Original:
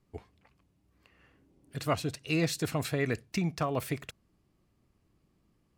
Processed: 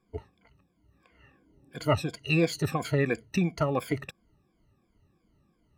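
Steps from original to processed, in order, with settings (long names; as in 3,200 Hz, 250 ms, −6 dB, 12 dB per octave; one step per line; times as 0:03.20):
rippled gain that drifts along the octave scale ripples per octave 1.8, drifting −2.9 Hz, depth 20 dB
high-shelf EQ 4,600 Hz −9 dB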